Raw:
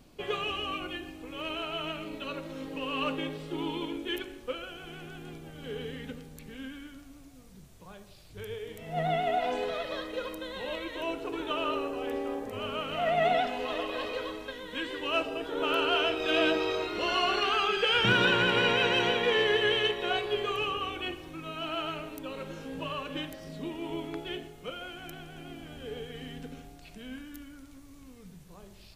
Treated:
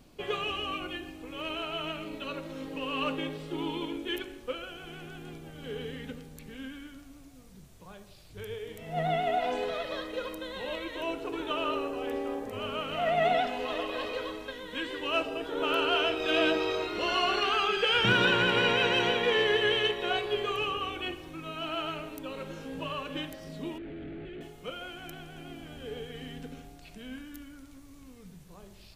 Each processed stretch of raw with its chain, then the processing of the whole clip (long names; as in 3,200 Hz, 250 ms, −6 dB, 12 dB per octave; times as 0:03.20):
0:23.78–0:24.41: sign of each sample alone + head-to-tape spacing loss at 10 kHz 45 dB + phaser with its sweep stopped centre 2,400 Hz, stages 4
whole clip: no processing